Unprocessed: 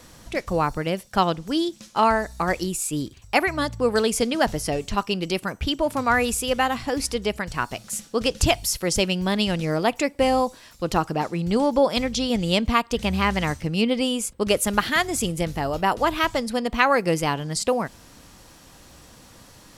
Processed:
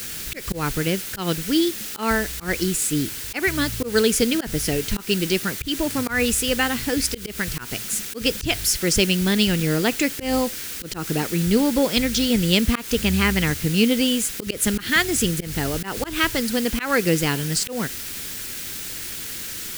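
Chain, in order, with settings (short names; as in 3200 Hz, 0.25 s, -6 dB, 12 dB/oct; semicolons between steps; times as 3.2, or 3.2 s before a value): requantised 6-bit, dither triangular; auto swell 0.144 s; band shelf 810 Hz -10 dB 1.3 oct; gain +4 dB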